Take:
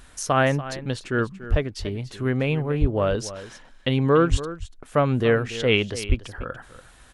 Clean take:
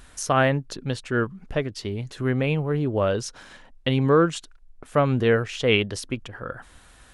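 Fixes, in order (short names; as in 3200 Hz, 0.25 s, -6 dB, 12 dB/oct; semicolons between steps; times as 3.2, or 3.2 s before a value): de-plosive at 1.5/2.8/4.3/6.08; inverse comb 0.288 s -14.5 dB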